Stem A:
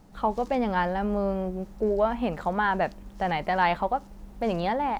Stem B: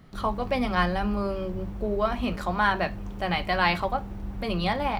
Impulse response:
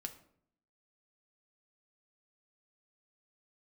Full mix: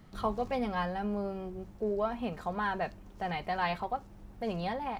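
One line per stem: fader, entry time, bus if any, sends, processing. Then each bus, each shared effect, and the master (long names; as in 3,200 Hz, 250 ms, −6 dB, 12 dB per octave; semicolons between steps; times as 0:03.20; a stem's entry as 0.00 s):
−9.0 dB, 0.00 s, no send, no processing
−3.5 dB, 0.00 s, no send, automatic ducking −11 dB, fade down 0.85 s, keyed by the first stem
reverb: not used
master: no processing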